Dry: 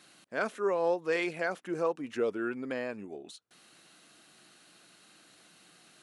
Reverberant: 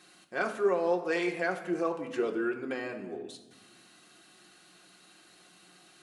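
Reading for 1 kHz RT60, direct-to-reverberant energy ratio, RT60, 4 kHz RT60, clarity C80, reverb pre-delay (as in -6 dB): 1.2 s, 1.5 dB, 1.2 s, 0.85 s, 12.5 dB, 3 ms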